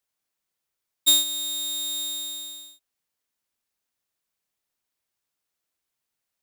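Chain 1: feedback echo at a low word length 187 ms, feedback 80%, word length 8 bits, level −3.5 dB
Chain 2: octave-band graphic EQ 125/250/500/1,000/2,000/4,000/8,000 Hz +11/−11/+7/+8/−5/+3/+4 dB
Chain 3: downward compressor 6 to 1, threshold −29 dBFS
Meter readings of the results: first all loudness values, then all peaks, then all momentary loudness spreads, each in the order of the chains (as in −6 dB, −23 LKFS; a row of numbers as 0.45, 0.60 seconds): −20.0, −20.5, −30.0 LKFS; −9.5, −5.5, −20.0 dBFS; 18, 16, 9 LU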